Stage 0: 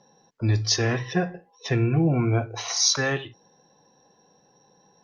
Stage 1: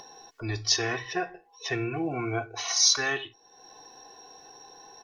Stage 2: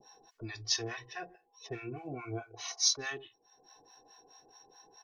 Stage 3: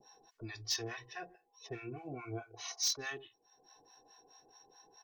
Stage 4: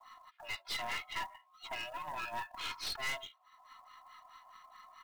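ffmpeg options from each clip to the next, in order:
ffmpeg -i in.wav -af "equalizer=frequency=140:width=0.32:gain=-12,aecho=1:1:2.7:0.68,acompressor=mode=upward:threshold=-36dB:ratio=2.5,volume=-1dB" out.wav
ffmpeg -i in.wav -filter_complex "[0:a]adynamicequalizer=threshold=0.00631:dfrequency=1600:dqfactor=1.1:tfrequency=1600:tqfactor=1.1:attack=5:release=100:ratio=0.375:range=2:mode=cutabove:tftype=bell,acrossover=split=720[link_01][link_02];[link_01]aeval=exprs='val(0)*(1-1/2+1/2*cos(2*PI*4.7*n/s))':channel_layout=same[link_03];[link_02]aeval=exprs='val(0)*(1-1/2-1/2*cos(2*PI*4.7*n/s))':channel_layout=same[link_04];[link_03][link_04]amix=inputs=2:normalize=0,volume=-5dB" out.wav
ffmpeg -i in.wav -af "asoftclip=type=hard:threshold=-25dB,volume=-3dB" out.wav
ffmpeg -i in.wav -af "highpass=frequency=550:width_type=q:width=0.5412,highpass=frequency=550:width_type=q:width=1.307,lowpass=frequency=3500:width_type=q:width=0.5176,lowpass=frequency=3500:width_type=q:width=0.7071,lowpass=frequency=3500:width_type=q:width=1.932,afreqshift=260,aeval=exprs='(tanh(224*val(0)+0.55)-tanh(0.55))/224':channel_layout=same,acrusher=bits=5:mode=log:mix=0:aa=0.000001,volume=13dB" out.wav

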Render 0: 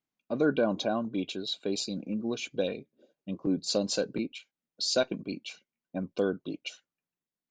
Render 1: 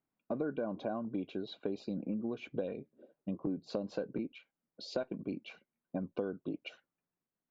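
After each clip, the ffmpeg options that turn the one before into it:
ffmpeg -i in.wav -af "lowpass=1500,acompressor=threshold=-37dB:ratio=6,volume=3.5dB" out.wav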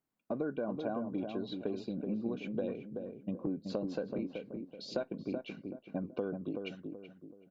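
ffmpeg -i in.wav -filter_complex "[0:a]asplit=2[link_01][link_02];[link_02]adelay=379,lowpass=frequency=880:poles=1,volume=-4.5dB,asplit=2[link_03][link_04];[link_04]adelay=379,lowpass=frequency=880:poles=1,volume=0.4,asplit=2[link_05][link_06];[link_06]adelay=379,lowpass=frequency=880:poles=1,volume=0.4,asplit=2[link_07][link_08];[link_08]adelay=379,lowpass=frequency=880:poles=1,volume=0.4,asplit=2[link_09][link_10];[link_10]adelay=379,lowpass=frequency=880:poles=1,volume=0.4[link_11];[link_01][link_03][link_05][link_07][link_09][link_11]amix=inputs=6:normalize=0" out.wav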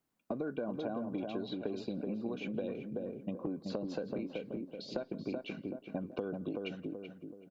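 ffmpeg -i in.wav -filter_complex "[0:a]acrossover=split=480|3100[link_01][link_02][link_03];[link_01]acompressor=threshold=-42dB:ratio=4[link_04];[link_02]acompressor=threshold=-46dB:ratio=4[link_05];[link_03]acompressor=threshold=-58dB:ratio=4[link_06];[link_04][link_05][link_06]amix=inputs=3:normalize=0,asplit=2[link_07][link_08];[link_08]adelay=170,highpass=300,lowpass=3400,asoftclip=type=hard:threshold=-36dB,volume=-20dB[link_09];[link_07][link_09]amix=inputs=2:normalize=0,volume=4.5dB" out.wav

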